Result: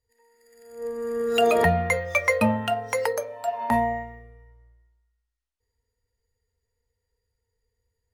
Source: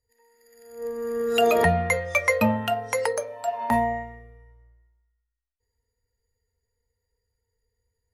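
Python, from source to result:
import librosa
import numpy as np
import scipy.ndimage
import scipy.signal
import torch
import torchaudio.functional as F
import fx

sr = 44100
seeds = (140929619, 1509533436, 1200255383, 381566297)

y = np.interp(np.arange(len(x)), np.arange(len(x))[::2], x[::2])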